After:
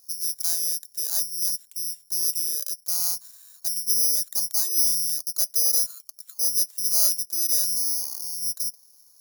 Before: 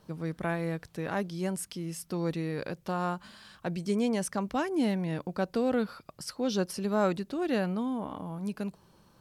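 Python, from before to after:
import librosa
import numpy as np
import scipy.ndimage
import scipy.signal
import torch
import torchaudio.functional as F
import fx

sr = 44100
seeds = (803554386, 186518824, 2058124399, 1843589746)

y = (np.kron(scipy.signal.resample_poly(x, 1, 8), np.eye(8)[0]) * 8)[:len(x)]
y = fx.bass_treble(y, sr, bass_db=-11, treble_db=14)
y = y * 10.0 ** (-15.5 / 20.0)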